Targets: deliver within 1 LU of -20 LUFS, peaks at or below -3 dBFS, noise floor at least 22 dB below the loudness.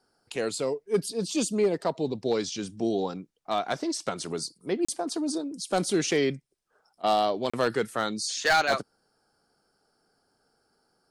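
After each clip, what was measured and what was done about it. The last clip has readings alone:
clipped 0.4%; flat tops at -16.5 dBFS; dropouts 2; longest dropout 35 ms; loudness -28.0 LUFS; peak -16.5 dBFS; loudness target -20.0 LUFS
-> clip repair -16.5 dBFS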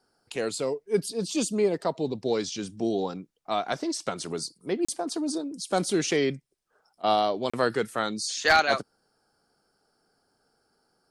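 clipped 0.0%; dropouts 2; longest dropout 35 ms
-> interpolate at 4.85/7.5, 35 ms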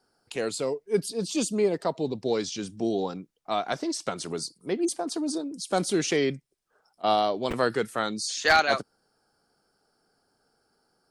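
dropouts 0; loudness -27.5 LUFS; peak -7.5 dBFS; loudness target -20.0 LUFS
-> gain +7.5 dB; limiter -3 dBFS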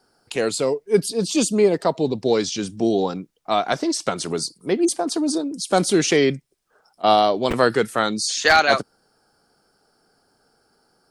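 loudness -20.5 LUFS; peak -3.0 dBFS; noise floor -65 dBFS

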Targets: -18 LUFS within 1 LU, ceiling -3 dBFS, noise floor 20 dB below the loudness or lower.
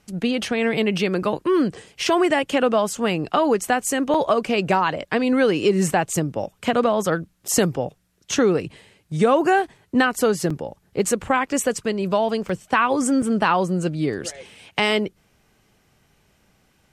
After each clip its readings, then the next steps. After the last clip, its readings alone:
dropouts 5; longest dropout 4.6 ms; loudness -21.5 LUFS; peak -4.0 dBFS; loudness target -18.0 LUFS
-> interpolate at 4.14/7.48/10.5/12.49/13.22, 4.6 ms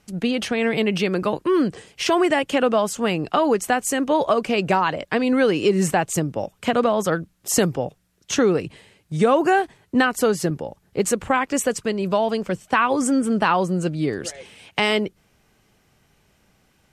dropouts 0; loudness -21.5 LUFS; peak -4.0 dBFS; loudness target -18.0 LUFS
-> gain +3.5 dB; limiter -3 dBFS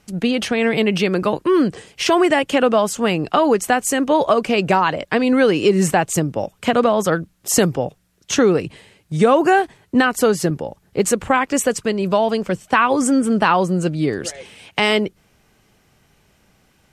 loudness -18.0 LUFS; peak -3.0 dBFS; noise floor -59 dBFS

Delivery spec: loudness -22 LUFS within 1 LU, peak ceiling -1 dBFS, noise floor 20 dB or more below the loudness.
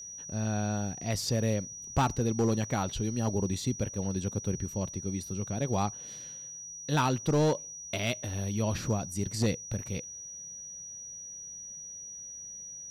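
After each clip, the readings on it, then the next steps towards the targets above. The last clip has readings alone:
clipped 0.5%; flat tops at -20.5 dBFS; steady tone 5800 Hz; tone level -41 dBFS; loudness -32.5 LUFS; peak -20.5 dBFS; loudness target -22.0 LUFS
-> clip repair -20.5 dBFS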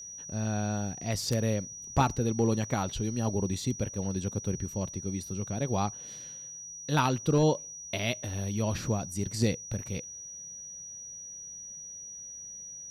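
clipped 0.0%; steady tone 5800 Hz; tone level -41 dBFS
-> notch 5800 Hz, Q 30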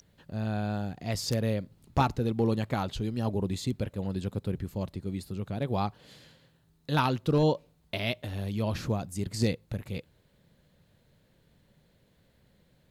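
steady tone none; loudness -31.5 LUFS; peak -11.5 dBFS; loudness target -22.0 LUFS
-> gain +9.5 dB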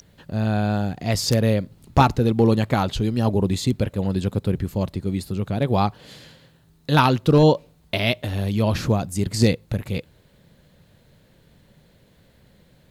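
loudness -22.0 LUFS; peak -2.0 dBFS; noise floor -57 dBFS

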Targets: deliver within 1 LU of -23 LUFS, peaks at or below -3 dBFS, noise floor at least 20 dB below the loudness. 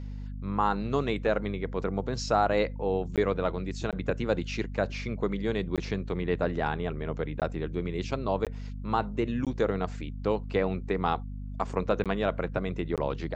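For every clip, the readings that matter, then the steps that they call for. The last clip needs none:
dropouts 8; longest dropout 17 ms; hum 50 Hz; harmonics up to 250 Hz; hum level -35 dBFS; loudness -30.5 LUFS; peak -11.0 dBFS; loudness target -23.0 LUFS
-> interpolate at 3.16/3.91/5.76/7.4/8.45/9.45/12.04/12.96, 17 ms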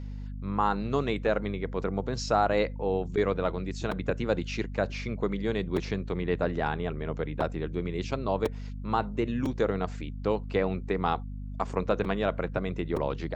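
dropouts 0; hum 50 Hz; harmonics up to 250 Hz; hum level -35 dBFS
-> notches 50/100/150/200/250 Hz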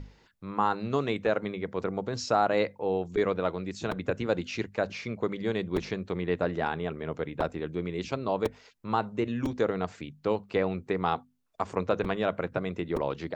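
hum none; loudness -30.5 LUFS; peak -11.5 dBFS; loudness target -23.0 LUFS
-> gain +7.5 dB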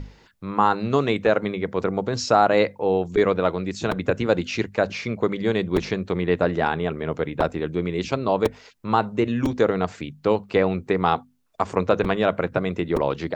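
loudness -23.0 LUFS; peak -4.0 dBFS; noise floor -54 dBFS

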